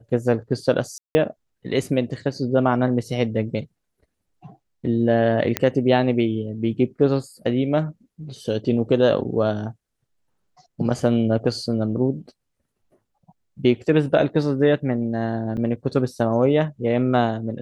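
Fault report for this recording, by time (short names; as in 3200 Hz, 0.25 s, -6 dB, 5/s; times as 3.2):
0.98–1.15 gap 0.17 s
5.57 pop -5 dBFS
15.57 gap 4 ms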